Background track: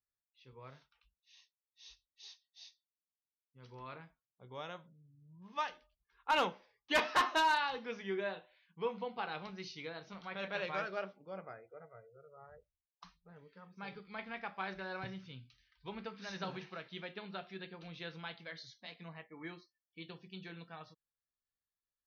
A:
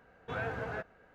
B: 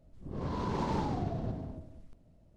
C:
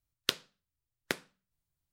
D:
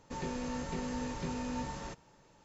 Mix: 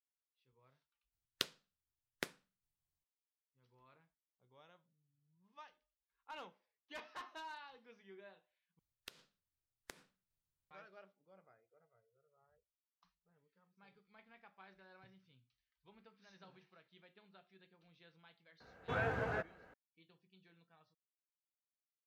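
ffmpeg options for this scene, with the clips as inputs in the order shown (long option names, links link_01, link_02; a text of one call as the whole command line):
ffmpeg -i bed.wav -i cue0.wav -i cue1.wav -i cue2.wav -filter_complex "[3:a]asplit=2[link_01][link_02];[0:a]volume=-19.5dB[link_03];[link_02]acompressor=threshold=-41dB:ratio=6:attack=3.2:release=140:knee=1:detection=peak[link_04];[1:a]highpass=40[link_05];[link_03]asplit=3[link_06][link_07][link_08];[link_06]atrim=end=1.124[link_09];[link_01]atrim=end=1.92,asetpts=PTS-STARTPTS,volume=-8.5dB[link_10];[link_07]atrim=start=3.036:end=8.794[link_11];[link_04]atrim=end=1.92,asetpts=PTS-STARTPTS,volume=-7.5dB[link_12];[link_08]atrim=start=10.706[link_13];[link_05]atrim=end=1.14,asetpts=PTS-STARTPTS,volume=-0.5dB,afade=type=in:duration=0.004:curve=hsin,afade=type=out:start_time=1.136:duration=0.004:curve=hsin,adelay=820260S[link_14];[link_09][link_10]acrossfade=duration=0.004:curve1=hsin:curve2=hsin[link_15];[link_15][link_11]acrossfade=duration=0.004:curve1=hsin:curve2=hsin[link_16];[link_16][link_12]acrossfade=duration=0.004:curve1=hsin:curve2=hsin[link_17];[link_17][link_13]acrossfade=duration=0.004:curve1=hsin:curve2=hsin[link_18];[link_18][link_14]amix=inputs=2:normalize=0" out.wav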